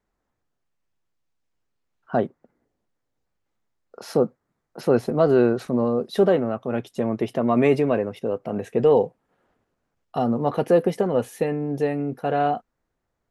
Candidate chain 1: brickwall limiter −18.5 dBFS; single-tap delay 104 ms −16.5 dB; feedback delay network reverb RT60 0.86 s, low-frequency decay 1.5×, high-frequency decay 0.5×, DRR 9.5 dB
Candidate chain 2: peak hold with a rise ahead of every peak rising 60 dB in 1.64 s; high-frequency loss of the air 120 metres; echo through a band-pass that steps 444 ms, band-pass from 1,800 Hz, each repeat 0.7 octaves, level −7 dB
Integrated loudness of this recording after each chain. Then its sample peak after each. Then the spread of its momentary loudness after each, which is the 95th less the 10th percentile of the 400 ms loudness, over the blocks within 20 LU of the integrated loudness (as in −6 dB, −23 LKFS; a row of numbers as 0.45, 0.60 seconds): −28.0, −20.0 LKFS; −13.5, −3.5 dBFS; 9, 14 LU